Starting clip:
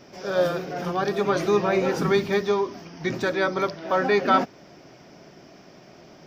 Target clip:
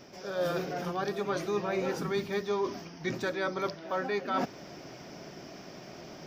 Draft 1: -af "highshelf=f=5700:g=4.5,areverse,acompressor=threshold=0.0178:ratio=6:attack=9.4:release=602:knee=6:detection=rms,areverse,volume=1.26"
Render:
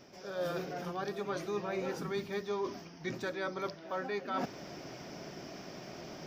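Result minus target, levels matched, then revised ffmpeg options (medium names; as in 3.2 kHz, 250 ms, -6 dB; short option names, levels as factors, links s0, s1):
compression: peak gain reduction +5 dB
-af "highshelf=f=5700:g=4.5,areverse,acompressor=threshold=0.0355:ratio=6:attack=9.4:release=602:knee=6:detection=rms,areverse,volume=1.26"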